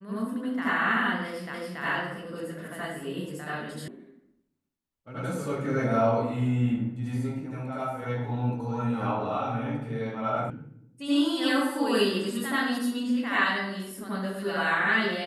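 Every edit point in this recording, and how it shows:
0:01.54: the same again, the last 0.28 s
0:03.88: cut off before it has died away
0:10.50: cut off before it has died away

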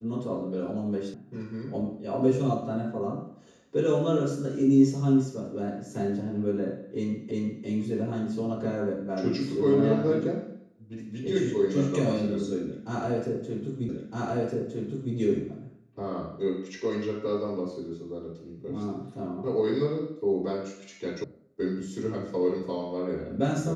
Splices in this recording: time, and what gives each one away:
0:01.14: cut off before it has died away
0:07.31: the same again, the last 0.35 s
0:13.89: the same again, the last 1.26 s
0:21.24: cut off before it has died away

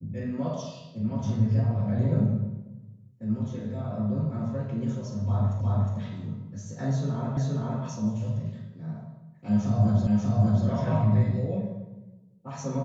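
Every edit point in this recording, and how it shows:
0:05.61: the same again, the last 0.36 s
0:07.37: the same again, the last 0.47 s
0:10.07: the same again, the last 0.59 s

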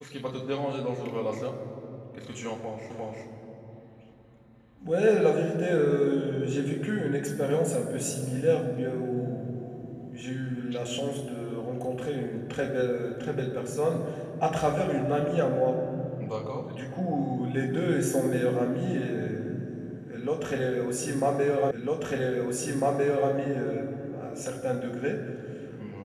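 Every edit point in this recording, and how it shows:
0:02.90: the same again, the last 0.35 s
0:21.71: the same again, the last 1.6 s

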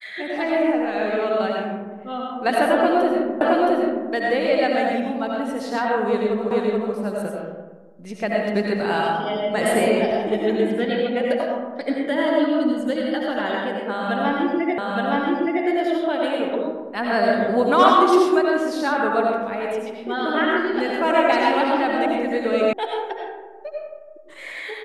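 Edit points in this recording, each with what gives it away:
0:03.41: the same again, the last 0.67 s
0:06.51: the same again, the last 0.43 s
0:14.78: the same again, the last 0.87 s
0:22.73: cut off before it has died away

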